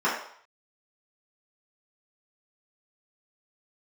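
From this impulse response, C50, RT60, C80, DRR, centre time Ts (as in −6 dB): 4.0 dB, 0.60 s, 7.5 dB, −8.5 dB, 39 ms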